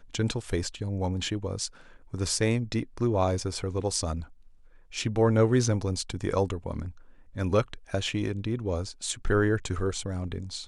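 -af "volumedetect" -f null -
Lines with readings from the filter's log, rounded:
mean_volume: -28.6 dB
max_volume: -10.4 dB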